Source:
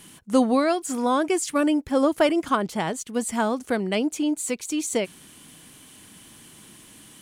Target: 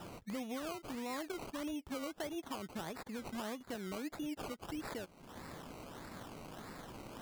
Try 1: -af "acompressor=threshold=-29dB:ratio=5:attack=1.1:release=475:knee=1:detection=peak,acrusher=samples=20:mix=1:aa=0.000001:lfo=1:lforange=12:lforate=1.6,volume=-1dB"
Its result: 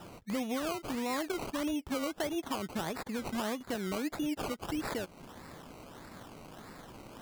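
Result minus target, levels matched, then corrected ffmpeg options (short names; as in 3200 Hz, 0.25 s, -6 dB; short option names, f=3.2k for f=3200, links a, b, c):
compressor: peak gain reduction -7 dB
-af "acompressor=threshold=-38dB:ratio=5:attack=1.1:release=475:knee=1:detection=peak,acrusher=samples=20:mix=1:aa=0.000001:lfo=1:lforange=12:lforate=1.6,volume=-1dB"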